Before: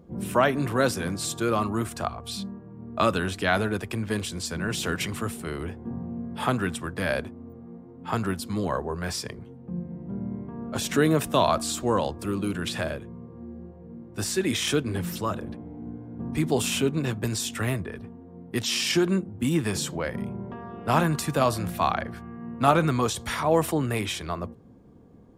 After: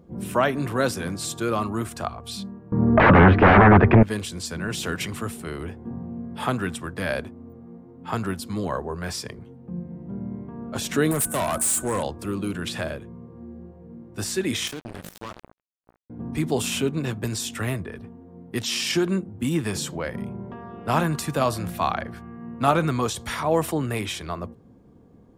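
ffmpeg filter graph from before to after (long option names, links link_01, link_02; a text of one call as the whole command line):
ffmpeg -i in.wav -filter_complex "[0:a]asettb=1/sr,asplit=3[link_01][link_02][link_03];[link_01]atrim=end=2.724[link_04];[link_02]atrim=start=2.72:end=4.03,asetpts=PTS-STARTPTS,afade=type=in:duration=0.004:curve=qsin,afade=type=out:start_time=1.306:duration=0.004:curve=qsin,aeval=exprs='0.398*sin(PI/2*7.94*val(0)/0.398)':channel_layout=same,lowpass=frequency=1900:width=0.5412,lowpass=frequency=1900:width=1.3066[link_05];[link_03]atrim=start=4.026[link_06];[link_04][link_05]acrossfade=duration=0.004:curve1=hsin:curve2=qsin[link_07];[link_07][link_06]acrossfade=duration=0.004:curve1=qsin:curve2=hsin,asettb=1/sr,asplit=3[link_08][link_09][link_10];[link_08]atrim=end=11.114[link_11];[link_09]atrim=start=11.11:end=12.03,asetpts=PTS-STARTPTS,afade=type=in:duration=0.004:curve=qsin,afade=type=out:start_time=0.916:duration=0.004:curve=qsin,highshelf=frequency=6500:width_type=q:width=3:gain=13,aeval=exprs='val(0)+0.00631*sin(2*PI*1500*n/s)':channel_layout=same,asoftclip=type=hard:threshold=-20.5dB[link_12];[link_10]atrim=start=12.026[link_13];[link_11][link_12]acrossfade=duration=0.004:curve1=hsin:curve2=qsin[link_14];[link_14][link_13]acrossfade=duration=0.004:curve1=qsin:curve2=hsin,asettb=1/sr,asplit=3[link_15][link_16][link_17];[link_15]atrim=end=14.674[link_18];[link_16]atrim=start=14.67:end=16.1,asetpts=PTS-STARTPTS,afade=type=in:duration=0.004:curve=qsin,afade=type=out:start_time=1.426:duration=0.004:curve=qsin,asplit=2[link_19][link_20];[link_20]adelay=17,volume=-14dB[link_21];[link_19][link_21]amix=inputs=2:normalize=0,atrim=end_sample=63063,acrusher=bits=3:mix=0:aa=0.5,acompressor=threshold=-31dB:ratio=6:attack=3.2:release=140:knee=1:detection=peak[link_22];[link_17]atrim=start=16.096[link_23];[link_18][link_22]acrossfade=duration=0.004:curve1=hsin:curve2=qsin[link_24];[link_24][link_23]acrossfade=duration=0.004:curve1=qsin:curve2=hsin" out.wav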